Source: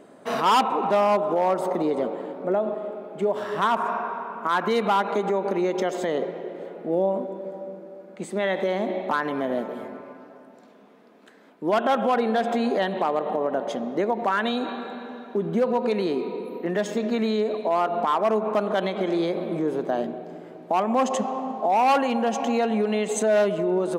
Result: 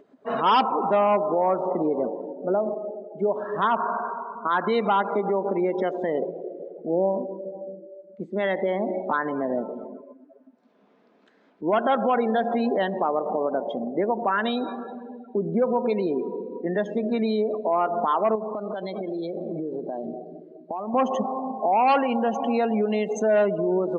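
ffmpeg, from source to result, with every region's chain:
ffmpeg -i in.wav -filter_complex "[0:a]asettb=1/sr,asplit=3[link_01][link_02][link_03];[link_01]atrim=end=18.354[link_04];[link_02]atrim=start=18.35:end=20.94,asetpts=PTS-STARTPTS,afade=type=in:duration=0.004:curve=qsin,afade=type=out:start_time=2.586:duration=0.004:curve=qsin,acompressor=threshold=-26dB:ratio=8:attack=3.2:release=140:knee=1:detection=peak,equalizer=frequency=4200:width=5.5:gain=9.5[link_05];[link_03]atrim=start=20.936[link_06];[link_04][link_05]acrossfade=duration=0.004:curve1=hsin:curve2=qsin[link_07];[link_07][link_06]acrossfade=duration=0.004:curve1=qsin:curve2=hsin,lowpass=frequency=6000:width=0.5412,lowpass=frequency=6000:width=1.3066,afftdn=noise_reduction=28:noise_floor=-32,acompressor=mode=upward:threshold=-42dB:ratio=2.5" out.wav

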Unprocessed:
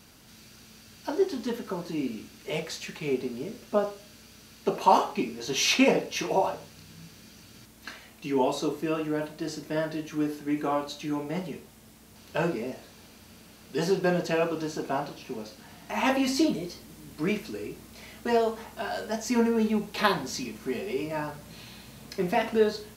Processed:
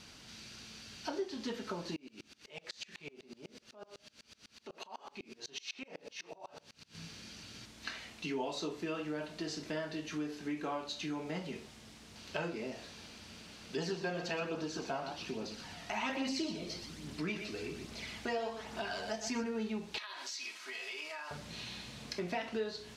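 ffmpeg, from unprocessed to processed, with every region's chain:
ffmpeg -i in.wav -filter_complex "[0:a]asettb=1/sr,asplit=3[link_01][link_02][link_03];[link_01]atrim=end=1.964[link_04];[link_02]atrim=start=1.96:end=6.95,asetpts=PTS-STARTPTS,afade=type=in:duration=0.004:curve=qsin,afade=type=out:start_time=4.986:duration=0.004:curve=qsin,lowshelf=frequency=210:gain=-6,acompressor=threshold=-37dB:ratio=6:attack=3.2:release=140:knee=1:detection=peak,aeval=exprs='val(0)*pow(10,-29*if(lt(mod(-8*n/s,1),2*abs(-8)/1000),1-mod(-8*n/s,1)/(2*abs(-8)/1000),(mod(-8*n/s,1)-2*abs(-8)/1000)/(1-2*abs(-8)/1000))/20)':channel_layout=same[link_05];[link_03]atrim=start=6.946[link_06];[link_04][link_05]acrossfade=duration=0.004:curve1=hsin:curve2=qsin[link_07];[link_07][link_06]acrossfade=duration=0.004:curve1=qsin:curve2=hsin,asettb=1/sr,asplit=3[link_08][link_09][link_10];[link_08]atrim=end=13.764[link_11];[link_09]atrim=start=13.76:end=19.44,asetpts=PTS-STARTPTS,afade=type=in:duration=0.004:curve=qsin,afade=type=out:start_time=5.676:duration=0.004:curve=qsin,aecho=1:1:122:0.335,atrim=end_sample=250488,aphaser=in_gain=1:out_gain=1:delay=1.7:decay=0.32:speed=1.2:type=triangular[link_12];[link_10]atrim=start=19.436[link_13];[link_11][link_12]acrossfade=duration=0.004:curve1=hsin:curve2=qsin[link_14];[link_14][link_13]acrossfade=duration=0.004:curve1=qsin:curve2=hsin,asettb=1/sr,asplit=3[link_15][link_16][link_17];[link_15]atrim=end=19.984[link_18];[link_16]atrim=start=19.98:end=21.31,asetpts=PTS-STARTPTS,afade=type=in:duration=0.004:curve=qsin,afade=type=out:start_time=1.326:duration=0.004:curve=qsin,highpass=1100,aecho=1:1:3.1:0.34,atrim=end_sample=58653,acompressor=threshold=-39dB:ratio=20:attack=3.2:release=140:knee=1:detection=peak[link_19];[link_17]atrim=start=21.306[link_20];[link_18][link_19]acrossfade=duration=0.004:curve1=hsin:curve2=qsin[link_21];[link_21][link_20]acrossfade=duration=0.004:curve1=qsin:curve2=hsin,lowpass=4900,highshelf=frequency=2200:gain=10,acompressor=threshold=-35dB:ratio=3,volume=-2.5dB" out.wav

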